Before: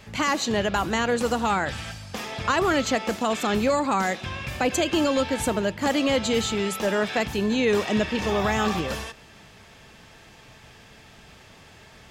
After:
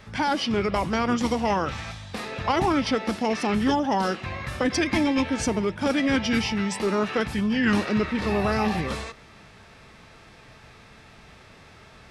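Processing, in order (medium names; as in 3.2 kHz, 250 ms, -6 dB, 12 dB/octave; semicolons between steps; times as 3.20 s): formant shift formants -5 st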